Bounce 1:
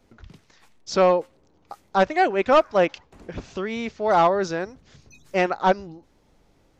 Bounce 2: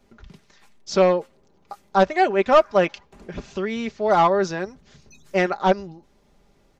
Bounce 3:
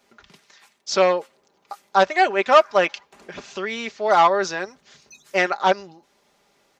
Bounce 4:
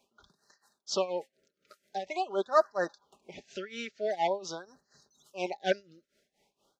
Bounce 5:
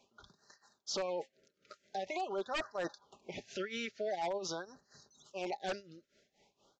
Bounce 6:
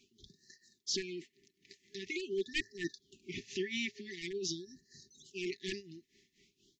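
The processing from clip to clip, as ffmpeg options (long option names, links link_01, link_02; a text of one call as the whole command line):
ffmpeg -i in.wav -af "aecho=1:1:5:0.46" out.wav
ffmpeg -i in.wav -af "highpass=frequency=960:poles=1,volume=5.5dB" out.wav
ffmpeg -i in.wav -af "tremolo=f=4.2:d=0.86,afftfilt=real='re*(1-between(b*sr/1024,860*pow(2800/860,0.5+0.5*sin(2*PI*0.46*pts/sr))/1.41,860*pow(2800/860,0.5+0.5*sin(2*PI*0.46*pts/sr))*1.41))':imag='im*(1-between(b*sr/1024,860*pow(2800/860,0.5+0.5*sin(2*PI*0.46*pts/sr))/1.41,860*pow(2800/860,0.5+0.5*sin(2*PI*0.46*pts/sr))*1.41))':win_size=1024:overlap=0.75,volume=-7dB" out.wav
ffmpeg -i in.wav -af "aresample=16000,aeval=exprs='0.0794*(abs(mod(val(0)/0.0794+3,4)-2)-1)':channel_layout=same,aresample=44100,alimiter=level_in=8dB:limit=-24dB:level=0:latency=1:release=15,volume=-8dB,equalizer=frequency=110:width_type=o:width=0.24:gain=9.5,volume=2.5dB" out.wav
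ffmpeg -i in.wav -af "afftfilt=real='re*(1-between(b*sr/4096,410,1700))':imag='im*(1-between(b*sr/4096,410,1700))':win_size=4096:overlap=0.75,volume=4dB" out.wav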